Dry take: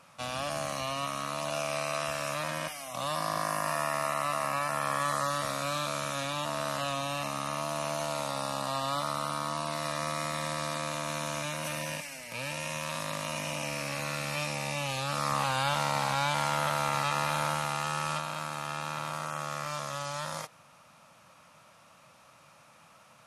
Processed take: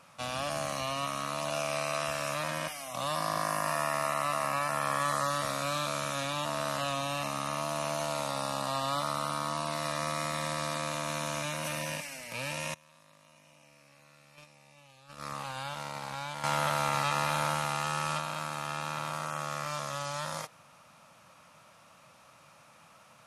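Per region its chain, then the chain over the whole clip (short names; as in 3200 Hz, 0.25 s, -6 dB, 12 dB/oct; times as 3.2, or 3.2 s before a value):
12.74–16.44 gate -30 dBFS, range -25 dB + compressor 5:1, threshold -34 dBFS
whole clip: dry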